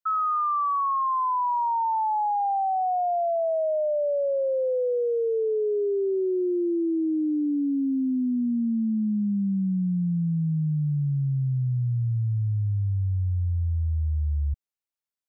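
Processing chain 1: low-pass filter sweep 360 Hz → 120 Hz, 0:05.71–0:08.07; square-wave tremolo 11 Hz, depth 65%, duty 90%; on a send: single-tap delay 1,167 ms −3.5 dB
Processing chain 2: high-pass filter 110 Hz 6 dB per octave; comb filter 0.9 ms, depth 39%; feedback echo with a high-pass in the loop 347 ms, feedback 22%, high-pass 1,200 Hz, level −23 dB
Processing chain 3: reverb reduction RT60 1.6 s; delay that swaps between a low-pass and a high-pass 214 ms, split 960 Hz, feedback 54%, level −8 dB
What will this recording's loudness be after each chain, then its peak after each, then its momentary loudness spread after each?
−23.0, −25.5, −30.0 LKFS; −10.5, −18.5, −21.0 dBFS; 18, 8, 6 LU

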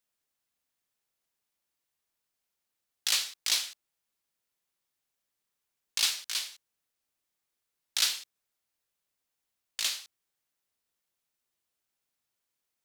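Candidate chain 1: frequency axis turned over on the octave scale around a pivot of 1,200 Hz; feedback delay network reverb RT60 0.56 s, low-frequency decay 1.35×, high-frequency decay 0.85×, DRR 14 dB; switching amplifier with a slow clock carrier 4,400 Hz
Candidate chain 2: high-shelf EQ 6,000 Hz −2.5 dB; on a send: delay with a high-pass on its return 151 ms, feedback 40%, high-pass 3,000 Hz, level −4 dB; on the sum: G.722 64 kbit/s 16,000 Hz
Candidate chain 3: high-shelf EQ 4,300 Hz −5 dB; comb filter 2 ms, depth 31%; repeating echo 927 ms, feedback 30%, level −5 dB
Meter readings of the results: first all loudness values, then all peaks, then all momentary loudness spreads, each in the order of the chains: −26.0, −31.5, −33.5 LKFS; −5.5, −13.0, −13.5 dBFS; 5, 17, 17 LU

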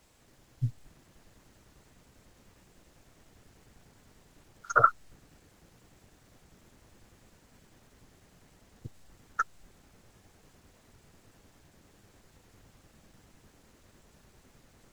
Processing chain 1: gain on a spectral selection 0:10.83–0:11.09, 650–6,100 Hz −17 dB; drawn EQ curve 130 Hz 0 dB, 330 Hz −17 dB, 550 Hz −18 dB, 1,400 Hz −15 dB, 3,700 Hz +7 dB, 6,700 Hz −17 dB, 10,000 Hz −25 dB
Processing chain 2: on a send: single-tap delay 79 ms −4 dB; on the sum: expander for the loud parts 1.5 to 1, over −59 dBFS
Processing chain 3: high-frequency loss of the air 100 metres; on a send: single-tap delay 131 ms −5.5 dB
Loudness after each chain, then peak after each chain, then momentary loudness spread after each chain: −41.0, −27.5, −29.5 LKFS; −20.5, −7.0, −7.0 dBFS; 16, 18, 18 LU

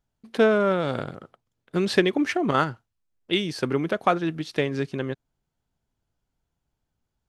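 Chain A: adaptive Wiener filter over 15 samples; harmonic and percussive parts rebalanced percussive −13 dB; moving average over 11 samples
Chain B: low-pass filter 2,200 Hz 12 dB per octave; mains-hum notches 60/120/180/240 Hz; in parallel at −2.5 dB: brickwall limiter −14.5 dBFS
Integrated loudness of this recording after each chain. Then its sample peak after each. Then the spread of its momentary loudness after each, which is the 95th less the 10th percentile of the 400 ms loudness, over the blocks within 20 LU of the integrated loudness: −27.5, −21.5 LKFS; −10.0, −4.0 dBFS; 13, 11 LU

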